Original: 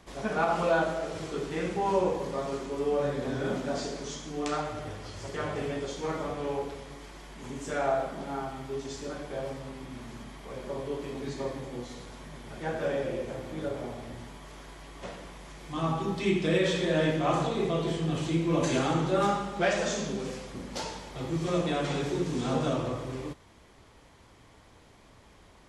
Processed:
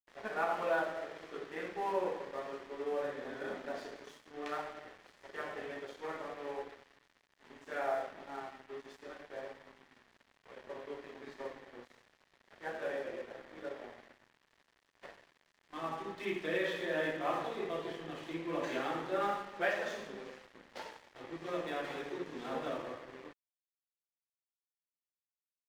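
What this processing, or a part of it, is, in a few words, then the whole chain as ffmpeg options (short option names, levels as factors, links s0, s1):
pocket radio on a weak battery: -af "highpass=350,lowpass=3200,aeval=exprs='sgn(val(0))*max(abs(val(0))-0.00531,0)':c=same,equalizer=f=1800:t=o:w=0.35:g=6,volume=0.501"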